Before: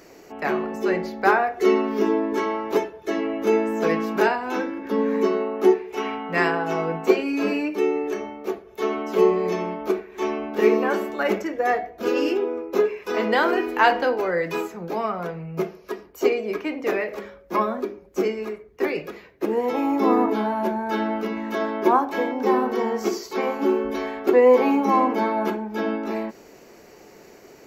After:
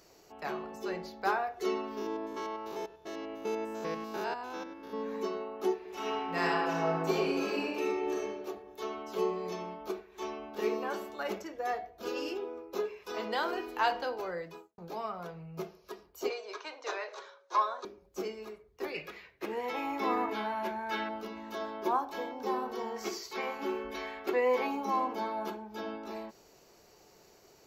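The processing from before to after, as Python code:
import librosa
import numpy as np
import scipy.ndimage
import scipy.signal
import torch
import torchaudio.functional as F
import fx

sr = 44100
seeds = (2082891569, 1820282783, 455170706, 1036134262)

y = fx.spec_steps(x, sr, hold_ms=100, at=(1.94, 5.01), fade=0.02)
y = fx.reverb_throw(y, sr, start_s=5.77, length_s=2.44, rt60_s=1.6, drr_db=-3.5)
y = fx.studio_fade_out(y, sr, start_s=14.28, length_s=0.5)
y = fx.cabinet(y, sr, low_hz=430.0, low_slope=24, high_hz=8500.0, hz=(1000.0, 1500.0, 3900.0, 6200.0), db=(8, 8, 9, 8), at=(16.3, 17.85))
y = fx.peak_eq(y, sr, hz=2100.0, db=12.5, octaves=1.1, at=(18.94, 21.09))
y = fx.peak_eq(y, sr, hz=2100.0, db=9.5, octaves=0.91, at=(22.96, 24.67))
y = fx.graphic_eq(y, sr, hz=(250, 500, 2000, 4000), db=(-9, -4, -8, 4))
y = F.gain(torch.from_numpy(y), -8.0).numpy()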